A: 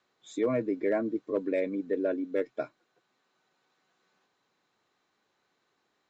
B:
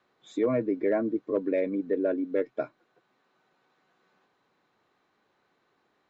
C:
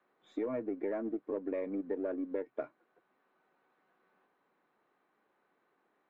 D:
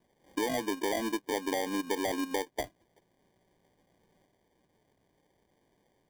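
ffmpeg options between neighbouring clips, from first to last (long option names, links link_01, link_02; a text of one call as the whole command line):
ffmpeg -i in.wav -filter_complex "[0:a]aemphasis=mode=reproduction:type=75fm,asplit=2[link_01][link_02];[link_02]acompressor=threshold=-37dB:ratio=6,volume=-2.5dB[link_03];[link_01][link_03]amix=inputs=2:normalize=0" out.wav
ffmpeg -i in.wav -filter_complex "[0:a]aeval=exprs='if(lt(val(0),0),0.708*val(0),val(0))':channel_layout=same,acrossover=split=160 2700:gain=0.126 1 0.141[link_01][link_02][link_03];[link_01][link_02][link_03]amix=inputs=3:normalize=0,acompressor=threshold=-30dB:ratio=6,volume=-2dB" out.wav
ffmpeg -i in.wav -af "acrusher=samples=33:mix=1:aa=0.000001,volume=4dB" out.wav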